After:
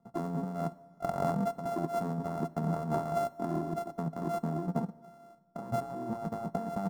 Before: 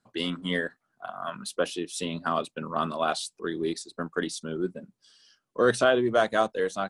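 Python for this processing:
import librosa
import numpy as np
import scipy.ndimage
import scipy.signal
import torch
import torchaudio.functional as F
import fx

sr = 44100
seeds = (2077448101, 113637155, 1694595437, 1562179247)

y = np.r_[np.sort(x[:len(x) // 64 * 64].reshape(-1, 64), axis=1).ravel(), x[len(x) // 64 * 64:]]
y = fx.curve_eq(y, sr, hz=(110.0, 160.0, 540.0, 900.0, 2600.0, 6100.0), db=(0, 12, -1, 6, -21, -14))
y = fx.over_compress(y, sr, threshold_db=-32.0, ratio=-1.0)
y = fx.rev_plate(y, sr, seeds[0], rt60_s=1.6, hf_ratio=0.9, predelay_ms=0, drr_db=18.0)
y = y * librosa.db_to_amplitude(-2.0)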